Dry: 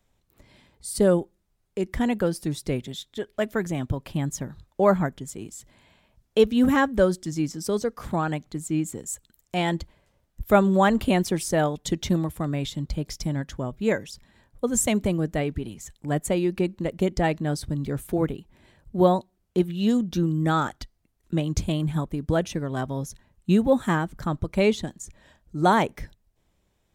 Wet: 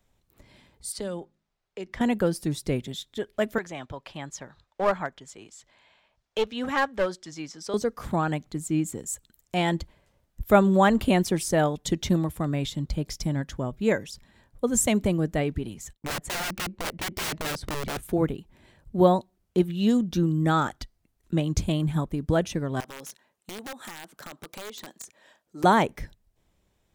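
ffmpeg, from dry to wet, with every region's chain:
-filter_complex "[0:a]asettb=1/sr,asplit=3[a][b][c];[a]atrim=end=0.924[d];[b]atrim=start=0.92:end=2.01,asetpts=PTS-STARTPTS,afade=t=in:d=0.004:c=qsin,afade=t=out:st=1.086:d=0.004:c=qsin,acrossover=split=440 6200:gain=0.251 1 0.126[e][f][g];[e][f][g]amix=inputs=3:normalize=0,acrossover=split=210|3000[h][i][j];[i]acompressor=threshold=-32dB:ratio=6:attack=3.2:release=140:knee=2.83:detection=peak[k];[h][k][j]amix=inputs=3:normalize=0,bandreject=f=52.94:t=h:w=4,bandreject=f=105.88:t=h:w=4,bandreject=f=158.82:t=h:w=4,bandreject=f=211.76:t=h:w=4,bandreject=f=264.7:t=h:w=4[l];[c]atrim=start=2.006[m];[d][l]acrossfade=d=0.004:c1=hsin:c2=qsin[n];[n][m]acrossfade=d=0.004:c1=qsin:c2=hsin,asettb=1/sr,asplit=3[o][p][q];[o]atrim=end=3.584[r];[p]atrim=start=3.58:end=7.74,asetpts=PTS-STARTPTS,afade=t=in:d=0.004:c=qsin,afade=t=out:st=4.156:d=0.004:c=qsin,acrossover=split=510 6700:gain=0.178 1 0.1[s][t][u];[s][t][u]amix=inputs=3:normalize=0,aeval=exprs='clip(val(0),-1,0.0668)':c=same[v];[q]atrim=start=7.736[w];[r][v]acrossfade=d=0.004:c1=hsin:c2=qsin[x];[x][w]acrossfade=d=0.004:c1=qsin:c2=hsin,asettb=1/sr,asplit=3[y][z][aa];[y]atrim=end=15.934[ab];[z]atrim=start=15.93:end=18.03,asetpts=PTS-STARTPTS,afade=t=in:d=0.004:c=qsin,afade=t=out:st=2.096:d=0.004:c=qsin,aemphasis=mode=reproduction:type=50kf,agate=range=-33dB:threshold=-53dB:ratio=3:release=100:detection=peak,aeval=exprs='(mod(18.8*val(0)+1,2)-1)/18.8':c=same[ac];[aa]atrim=start=18.026[ad];[ab][ac]acrossfade=d=0.004:c1=hsin:c2=qsin[ae];[ae][ad]acrossfade=d=0.004:c1=qsin:c2=hsin,asettb=1/sr,asplit=3[af][ag][ah];[af]atrim=end=22.804[ai];[ag]atrim=start=22.8:end=25.64,asetpts=PTS-STARTPTS,afade=t=in:d=0.004:c=qsin,afade=t=out:st=2.836:d=0.004:c=qsin,highpass=400,acompressor=threshold=-35dB:ratio=8:attack=3.2:release=140:knee=1:detection=peak,aeval=exprs='(mod(39.8*val(0)+1,2)-1)/39.8':c=same[aj];[ah]atrim=start=25.636[ak];[ai][aj]acrossfade=d=0.004:c1=hsin:c2=qsin[al];[al][ak]acrossfade=d=0.004:c1=qsin:c2=hsin"

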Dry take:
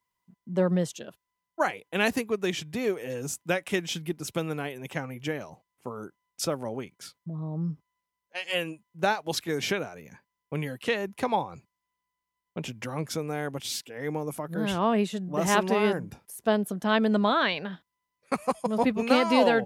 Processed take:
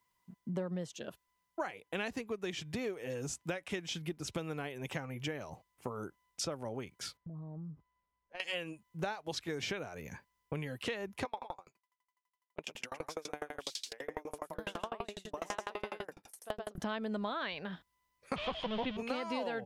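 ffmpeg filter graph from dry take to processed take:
-filter_complex "[0:a]asettb=1/sr,asplit=3[a][b][c];[a]atrim=end=7.174[d];[b]atrim=start=7.17:end=8.4,asetpts=PTS-STARTPTS,afade=t=in:d=0.004:c=qsin,afade=t=out:st=1.226:d=0.004:c=qsin,lowpass=f=1.2k:p=1,acompressor=threshold=-46dB:ratio=5:attack=3.2:release=140:knee=1:detection=peak[e];[c]atrim=start=8.396[f];[d][e]acrossfade=d=0.004:c1=hsin:c2=qsin[g];[g][f]acrossfade=d=0.004:c1=qsin:c2=hsin,asettb=1/sr,asplit=3[h][i][j];[h]atrim=end=11.254[k];[i]atrim=start=11.25:end=16.78,asetpts=PTS-STARTPTS,afade=t=in:d=0.004:c=qsin,afade=t=out:st=5.526:d=0.004:c=qsin,highpass=390,aecho=1:1:121:0.708,atrim=end_sample=243873,aeval=exprs='val(0)*pow(10,-34*if(lt(mod(12*n/s,1),2*abs(12)/1000),1-mod(12*n/s,1)/(2*abs(12)/1000),(mod(12*n/s,1)-2*abs(12)/1000)/(1-2*abs(12)/1000))/20)':c=same[l];[j]atrim=start=16.776[m];[k][l]acrossfade=d=0.004:c1=hsin:c2=qsin[n];[n][m]acrossfade=d=0.004:c1=qsin:c2=hsin,asettb=1/sr,asplit=3[o][p][q];[o]atrim=end=18.364[r];[p]atrim=start=18.36:end=18.97,asetpts=PTS-STARTPTS,afade=t=in:d=0.004:c=qsin,afade=t=out:st=0.606:d=0.004:c=qsin,aeval=exprs='val(0)+0.5*0.0447*sgn(val(0))':c=same,lowpass=f=4.1k:w=0.5412,lowpass=f=4.1k:w=1.3066,equalizer=f=3.2k:w=2.8:g=15[s];[q]atrim=start=18.966[t];[r][s]acrossfade=d=0.004:c1=hsin:c2=qsin[u];[u][t]acrossfade=d=0.004:c1=qsin:c2=hsin,acrossover=split=8000[v][w];[w]acompressor=threshold=-59dB:ratio=4:attack=1:release=60[x];[v][x]amix=inputs=2:normalize=0,asubboost=boost=3:cutoff=90,acompressor=threshold=-40dB:ratio=5,volume=3.5dB"

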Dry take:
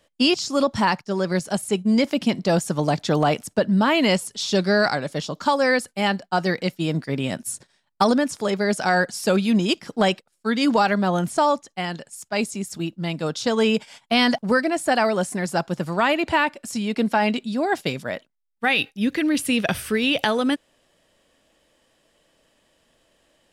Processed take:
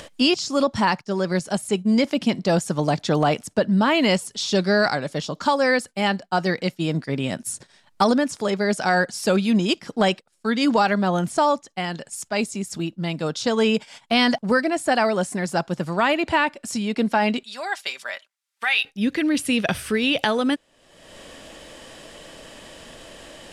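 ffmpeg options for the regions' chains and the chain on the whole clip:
-filter_complex "[0:a]asettb=1/sr,asplit=3[a][b][c];[a]atrim=end=17.434[d];[b]atrim=start=17.43:end=18.85,asetpts=PTS-STARTPTS,afade=t=in:d=0.004:c=qsin,afade=t=out:st=1.416:d=0.004:c=qsin,highpass=1.2k,aecho=1:1:5.1:0.4,atrim=end_sample=62622[e];[c]atrim=start=18.846[f];[d][e]acrossfade=d=0.004:c1=hsin:c2=qsin[g];[g][f]acrossfade=d=0.004:c1=qsin:c2=hsin,lowpass=11k,acompressor=mode=upward:threshold=-24dB:ratio=2.5"

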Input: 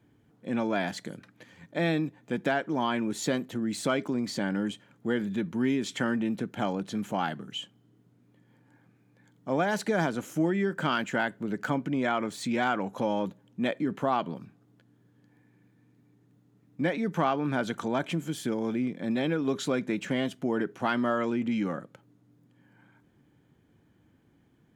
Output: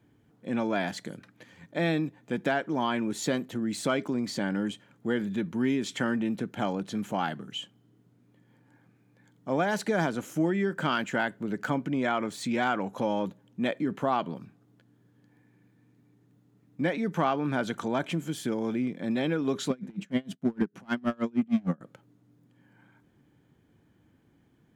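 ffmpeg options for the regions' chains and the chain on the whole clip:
-filter_complex "[0:a]asettb=1/sr,asplit=3[a][b][c];[a]atrim=end=19.704[d];[b]atrim=start=19.7:end=21.81,asetpts=PTS-STARTPTS,afade=t=in:d=0.004:c=qsin,afade=t=out:st=2.106:d=0.004:c=qsin,equalizer=f=190:w=1.8:g=14,asoftclip=type=hard:threshold=-17dB,aeval=exprs='val(0)*pow(10,-33*(0.5-0.5*cos(2*PI*6.5*n/s))/20)':c=same[e];[c]atrim=start=21.806[f];[d][e]acrossfade=d=0.004:c1=hsin:c2=qsin[g];[g][f]acrossfade=d=0.004:c1=qsin:c2=hsin"

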